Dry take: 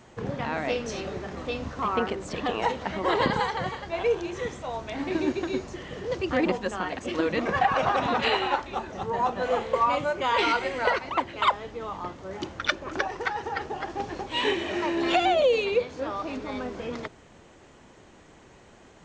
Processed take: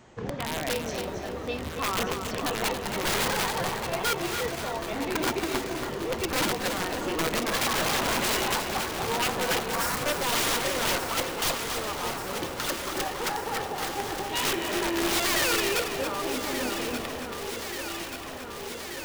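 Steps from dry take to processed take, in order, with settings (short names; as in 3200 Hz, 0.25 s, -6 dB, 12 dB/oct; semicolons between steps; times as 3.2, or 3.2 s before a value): wrapped overs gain 20 dB; 9.6–10.06 fixed phaser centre 1300 Hz, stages 4; on a send: echo with dull and thin repeats by turns 0.591 s, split 1200 Hz, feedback 87%, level -7.5 dB; on the sum: lo-fi delay 0.278 s, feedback 35%, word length 8-bit, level -7 dB; gain -1.5 dB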